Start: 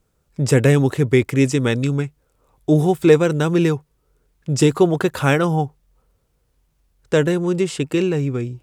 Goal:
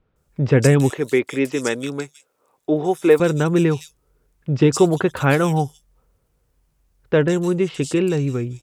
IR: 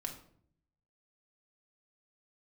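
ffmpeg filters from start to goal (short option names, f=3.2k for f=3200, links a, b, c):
-filter_complex "[0:a]asettb=1/sr,asplit=3[a][b][c];[a]atrim=end=0.904[d];[b]atrim=start=0.9:end=3.2,asetpts=PTS-STARTPTS,afade=t=in:d=0.004:c=qsin,afade=t=out:st=2.296:d=0.004:c=qsin,highpass=320[e];[c]atrim=start=3.196[f];[d][e]acrossfade=d=0.004:c1=hsin:c2=qsin[g];[g][f]acrossfade=d=0.004:c1=qsin:c2=hsin,acrossover=split=3600[h][i];[i]adelay=160[j];[h][j]amix=inputs=2:normalize=0"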